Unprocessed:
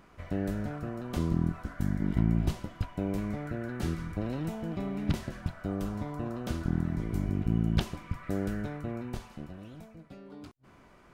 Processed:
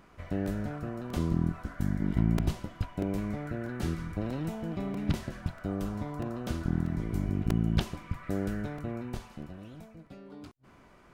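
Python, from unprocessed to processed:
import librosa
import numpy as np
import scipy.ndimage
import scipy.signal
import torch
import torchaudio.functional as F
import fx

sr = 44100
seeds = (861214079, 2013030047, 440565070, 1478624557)

y = fx.buffer_crackle(x, sr, first_s=0.46, period_s=0.64, block=128, kind='repeat')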